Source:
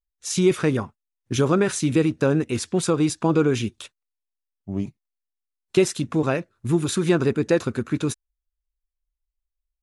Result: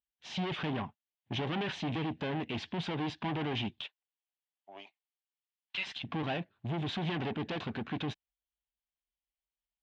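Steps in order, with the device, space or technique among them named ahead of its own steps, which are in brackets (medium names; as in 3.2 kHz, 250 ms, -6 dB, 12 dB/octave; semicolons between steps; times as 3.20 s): 3.80–6.03 s: high-pass 360 Hz -> 1.1 kHz 24 dB/octave; guitar amplifier (valve stage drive 29 dB, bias 0.35; tone controls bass -3 dB, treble -4 dB; cabinet simulation 91–3900 Hz, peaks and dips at 170 Hz +3 dB, 360 Hz -6 dB, 510 Hz -8 dB, 770 Hz +4 dB, 1.3 kHz -9 dB, 3.1 kHz +7 dB)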